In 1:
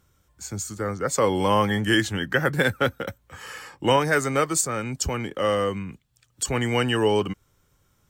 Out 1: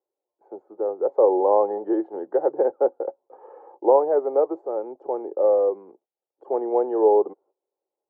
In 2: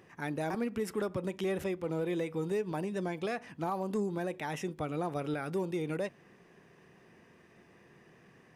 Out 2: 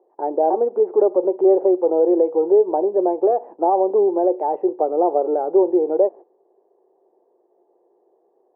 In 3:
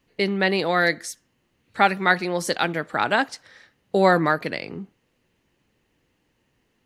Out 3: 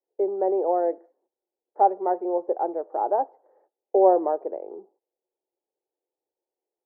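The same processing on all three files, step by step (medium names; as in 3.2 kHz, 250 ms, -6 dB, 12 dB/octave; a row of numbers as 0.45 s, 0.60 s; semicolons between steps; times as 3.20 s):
gate -51 dBFS, range -16 dB; Chebyshev band-pass 360–850 Hz, order 3; peak normalisation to -6 dBFS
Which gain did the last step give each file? +6.0 dB, +20.0 dB, +2.0 dB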